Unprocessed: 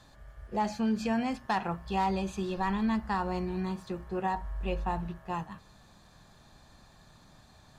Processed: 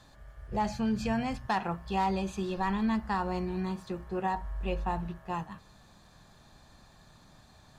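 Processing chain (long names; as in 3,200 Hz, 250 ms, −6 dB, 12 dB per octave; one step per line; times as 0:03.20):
0:00.48–0:01.49: low shelf with overshoot 170 Hz +10 dB, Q 1.5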